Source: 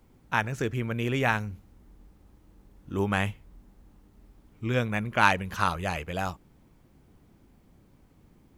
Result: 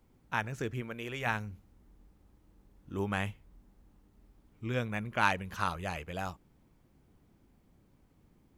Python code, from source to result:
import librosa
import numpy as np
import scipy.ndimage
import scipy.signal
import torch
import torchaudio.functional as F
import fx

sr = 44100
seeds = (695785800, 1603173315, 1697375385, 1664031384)

y = fx.peak_eq(x, sr, hz=fx.line((0.8, 70.0), (1.25, 280.0)), db=-12.0, octaves=1.7, at=(0.8, 1.25), fade=0.02)
y = y * 10.0 ** (-6.5 / 20.0)